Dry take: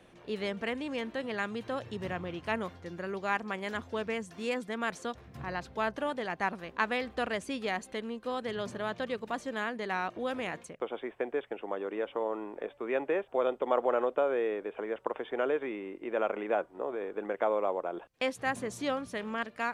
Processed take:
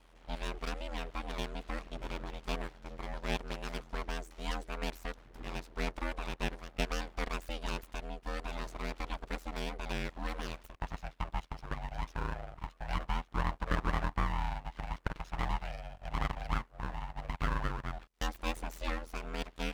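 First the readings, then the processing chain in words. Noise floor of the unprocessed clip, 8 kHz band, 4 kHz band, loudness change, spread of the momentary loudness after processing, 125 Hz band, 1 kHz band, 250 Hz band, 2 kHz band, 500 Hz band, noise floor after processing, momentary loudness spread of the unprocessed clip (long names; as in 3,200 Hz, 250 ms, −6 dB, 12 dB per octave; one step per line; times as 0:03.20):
−56 dBFS, −0.5 dB, −0.5 dB, −5.5 dB, 8 LU, +7.5 dB, −4.5 dB, −6.0 dB, −5.5 dB, −13.0 dB, −60 dBFS, 9 LU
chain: full-wave rectification
ring modulation 41 Hz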